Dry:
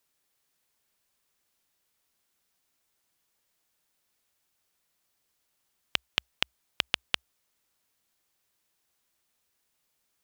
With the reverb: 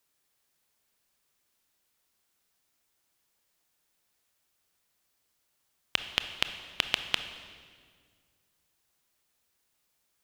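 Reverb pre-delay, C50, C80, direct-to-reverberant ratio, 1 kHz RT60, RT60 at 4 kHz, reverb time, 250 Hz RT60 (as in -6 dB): 23 ms, 9.5 dB, 11.0 dB, 8.5 dB, 1.8 s, 1.6 s, 1.9 s, 2.3 s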